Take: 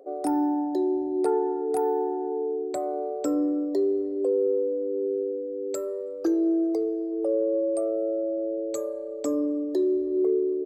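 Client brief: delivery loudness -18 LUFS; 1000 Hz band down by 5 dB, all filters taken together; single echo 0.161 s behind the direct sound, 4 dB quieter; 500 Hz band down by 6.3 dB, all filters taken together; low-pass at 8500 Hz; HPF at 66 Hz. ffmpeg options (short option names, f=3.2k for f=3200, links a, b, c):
-af "highpass=66,lowpass=8.5k,equalizer=f=500:t=o:g=-8,equalizer=f=1k:t=o:g=-3,aecho=1:1:161:0.631,volume=12dB"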